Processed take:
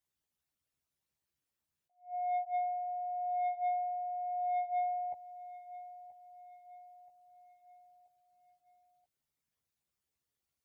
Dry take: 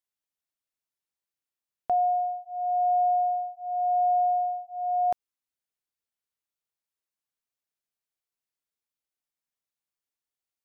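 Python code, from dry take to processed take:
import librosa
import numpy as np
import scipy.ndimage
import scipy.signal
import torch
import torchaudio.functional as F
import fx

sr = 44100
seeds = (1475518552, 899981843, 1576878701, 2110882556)

p1 = fx.envelope_sharpen(x, sr, power=2.0)
p2 = fx.peak_eq(p1, sr, hz=100.0, db=12.0, octaves=2.7)
p3 = fx.over_compress(p2, sr, threshold_db=-32.0, ratio=-1.0)
p4 = 10.0 ** (-25.5 / 20.0) * np.tanh(p3 / 10.0 ** (-25.5 / 20.0))
p5 = fx.doubler(p4, sr, ms=14.0, db=-3.0)
p6 = p5 + fx.echo_feedback(p5, sr, ms=979, feedback_pct=48, wet_db=-16.0, dry=0)
p7 = fx.attack_slew(p6, sr, db_per_s=200.0)
y = p7 * 10.0 ** (-7.0 / 20.0)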